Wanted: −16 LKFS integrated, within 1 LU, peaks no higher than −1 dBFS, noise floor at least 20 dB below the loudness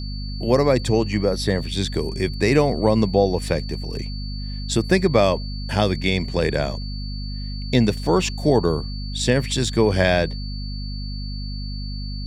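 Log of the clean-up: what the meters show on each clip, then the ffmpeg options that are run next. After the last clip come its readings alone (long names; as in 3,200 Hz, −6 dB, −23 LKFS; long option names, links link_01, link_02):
mains hum 50 Hz; hum harmonics up to 250 Hz; level of the hum −26 dBFS; interfering tone 4,500 Hz; level of the tone −37 dBFS; integrated loudness −22.0 LKFS; sample peak −3.0 dBFS; target loudness −16.0 LKFS
→ -af "bandreject=frequency=50:width_type=h:width=4,bandreject=frequency=100:width_type=h:width=4,bandreject=frequency=150:width_type=h:width=4,bandreject=frequency=200:width_type=h:width=4,bandreject=frequency=250:width_type=h:width=4"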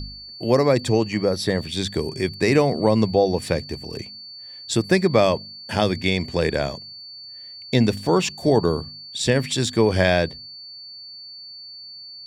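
mains hum none found; interfering tone 4,500 Hz; level of the tone −37 dBFS
→ -af "bandreject=frequency=4500:width=30"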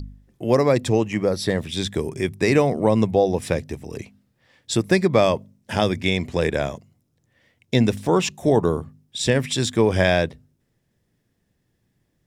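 interfering tone none found; integrated loudness −21.5 LKFS; sample peak −3.5 dBFS; target loudness −16.0 LKFS
→ -af "volume=5.5dB,alimiter=limit=-1dB:level=0:latency=1"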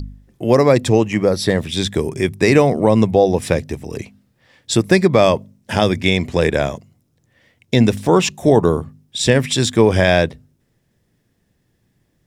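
integrated loudness −16.0 LKFS; sample peak −1.0 dBFS; background noise floor −65 dBFS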